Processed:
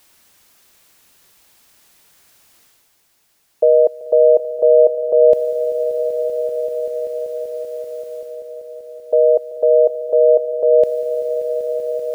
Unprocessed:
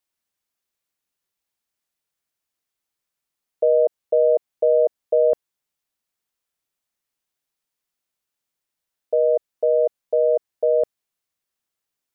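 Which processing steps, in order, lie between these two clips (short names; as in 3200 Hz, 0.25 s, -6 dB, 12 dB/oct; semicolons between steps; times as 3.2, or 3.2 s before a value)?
reverse; upward compressor, threshold -39 dBFS; reverse; swelling echo 0.193 s, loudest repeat 5, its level -16.5 dB; gain +5.5 dB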